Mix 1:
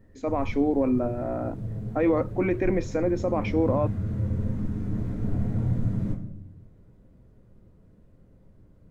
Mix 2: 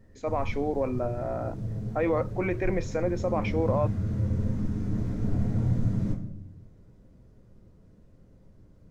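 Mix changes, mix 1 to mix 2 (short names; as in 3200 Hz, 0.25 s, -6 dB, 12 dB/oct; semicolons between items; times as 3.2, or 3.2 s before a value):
speech: add bell 270 Hz -10.5 dB 0.75 oct; background: add bell 5600 Hz +7.5 dB 0.94 oct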